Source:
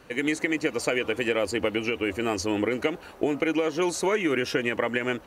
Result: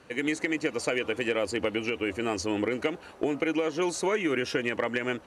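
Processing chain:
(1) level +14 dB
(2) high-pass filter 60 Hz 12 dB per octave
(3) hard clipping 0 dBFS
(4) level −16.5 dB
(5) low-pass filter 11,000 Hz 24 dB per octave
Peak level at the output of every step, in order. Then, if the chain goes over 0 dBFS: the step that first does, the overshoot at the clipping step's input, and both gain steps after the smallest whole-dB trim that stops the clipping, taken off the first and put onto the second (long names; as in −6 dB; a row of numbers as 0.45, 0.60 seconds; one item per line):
+3.5, +3.5, 0.0, −16.5, −16.0 dBFS
step 1, 3.5 dB
step 1 +10 dB, step 4 −12.5 dB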